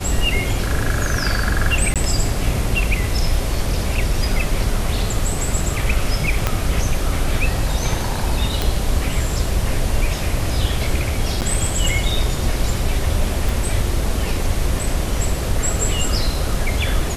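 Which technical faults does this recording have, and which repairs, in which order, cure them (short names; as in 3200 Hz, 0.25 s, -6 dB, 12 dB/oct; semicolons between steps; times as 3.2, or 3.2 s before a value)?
1.94–1.96 gap 17 ms
6.47 pop -2 dBFS
8.62 pop
11.41–11.42 gap 8.7 ms
13.49 pop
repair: de-click; interpolate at 1.94, 17 ms; interpolate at 11.41, 8.7 ms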